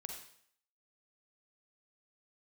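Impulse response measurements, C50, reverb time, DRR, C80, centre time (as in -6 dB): 3.5 dB, 0.60 s, 2.0 dB, 7.0 dB, 33 ms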